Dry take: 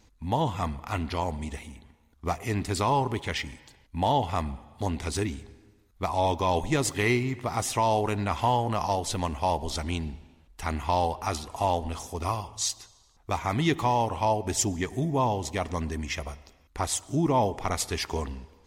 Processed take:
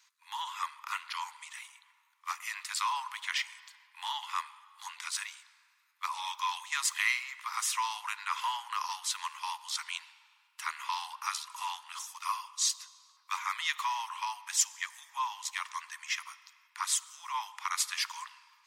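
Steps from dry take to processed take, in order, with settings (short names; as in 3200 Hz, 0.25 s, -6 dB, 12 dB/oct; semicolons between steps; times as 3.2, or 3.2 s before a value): steep high-pass 990 Hz 72 dB/oct; on a send: reverb RT60 3.0 s, pre-delay 8 ms, DRR 19.5 dB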